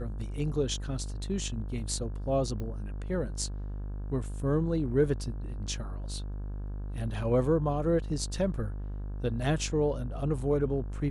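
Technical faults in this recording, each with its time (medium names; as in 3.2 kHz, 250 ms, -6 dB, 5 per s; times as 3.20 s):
buzz 50 Hz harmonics 34 -36 dBFS
2.60 s: pop -26 dBFS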